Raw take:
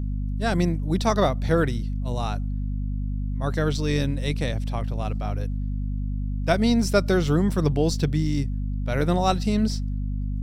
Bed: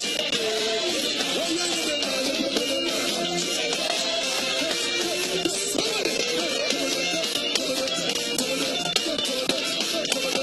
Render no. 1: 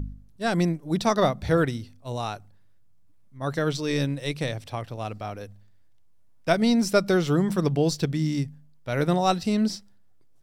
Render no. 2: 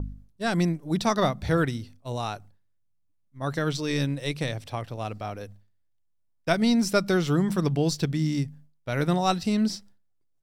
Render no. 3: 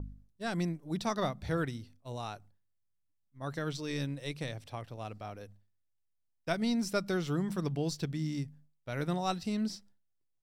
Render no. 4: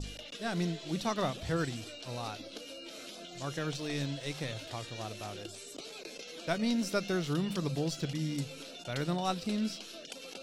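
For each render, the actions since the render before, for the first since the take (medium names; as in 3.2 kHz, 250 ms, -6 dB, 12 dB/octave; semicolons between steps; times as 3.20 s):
de-hum 50 Hz, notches 5
expander -44 dBFS; dynamic bell 520 Hz, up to -4 dB, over -31 dBFS, Q 1.3
trim -9 dB
add bed -21 dB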